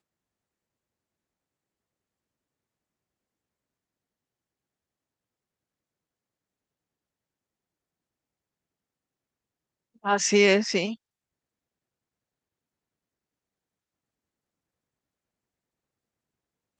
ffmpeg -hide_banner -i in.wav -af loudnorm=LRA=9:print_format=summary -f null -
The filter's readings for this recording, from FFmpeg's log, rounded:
Input Integrated:    -22.7 LUFS
Input True Peak:      -7.0 dBTP
Input LRA:             0.0 LU
Input Threshold:     -33.7 LUFS